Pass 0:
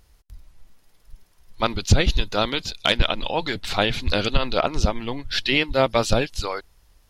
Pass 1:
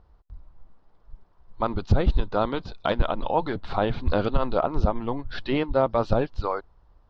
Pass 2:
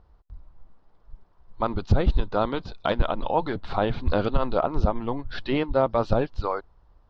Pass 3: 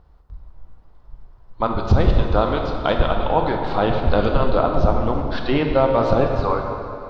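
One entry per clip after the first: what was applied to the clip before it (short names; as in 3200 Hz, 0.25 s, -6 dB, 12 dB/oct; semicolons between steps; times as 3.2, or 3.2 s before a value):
LPF 4400 Hz 24 dB/oct; resonant high shelf 1600 Hz -12 dB, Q 1.5; limiter -10.5 dBFS, peak gain reduction 5.5 dB
nothing audible
plate-style reverb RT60 2.8 s, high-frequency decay 0.75×, DRR 2 dB; gain +4 dB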